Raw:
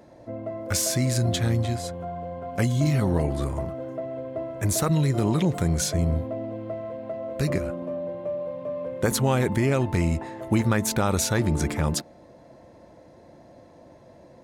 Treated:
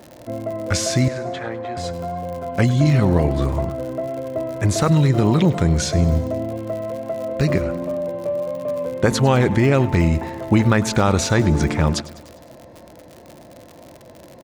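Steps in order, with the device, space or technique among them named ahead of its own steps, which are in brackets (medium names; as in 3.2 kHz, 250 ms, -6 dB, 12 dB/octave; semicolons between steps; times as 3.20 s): lo-fi chain (low-pass 5.5 kHz 12 dB/octave; wow and flutter 24 cents; crackle 92 per s -36 dBFS); 1.08–1.77 s: three-band isolator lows -23 dB, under 370 Hz, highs -20 dB, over 2.2 kHz; feedback delay 101 ms, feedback 59%, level -18.5 dB; trim +6.5 dB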